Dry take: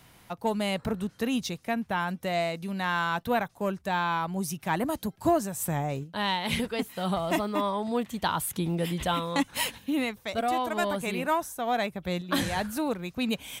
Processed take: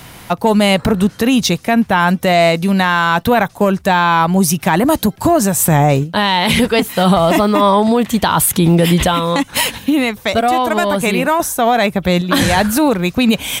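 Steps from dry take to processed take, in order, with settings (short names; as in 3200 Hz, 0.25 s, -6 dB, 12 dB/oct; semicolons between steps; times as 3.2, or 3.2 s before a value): 9.01–11.4 compressor 4:1, threshold -31 dBFS, peak gain reduction 9 dB; maximiser +22 dB; gain -2.5 dB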